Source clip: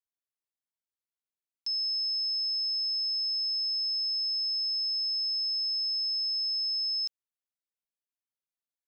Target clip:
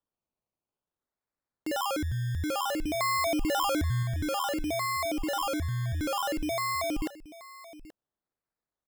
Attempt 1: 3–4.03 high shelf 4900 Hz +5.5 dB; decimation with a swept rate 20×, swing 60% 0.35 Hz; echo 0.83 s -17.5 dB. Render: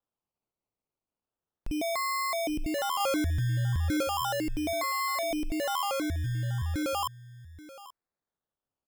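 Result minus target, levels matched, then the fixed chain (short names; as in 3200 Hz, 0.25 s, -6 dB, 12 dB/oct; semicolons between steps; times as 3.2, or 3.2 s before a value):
decimation with a swept rate: distortion +6 dB
3–4.03 high shelf 4900 Hz +5.5 dB; decimation with a swept rate 20×, swing 60% 0.56 Hz; echo 0.83 s -17.5 dB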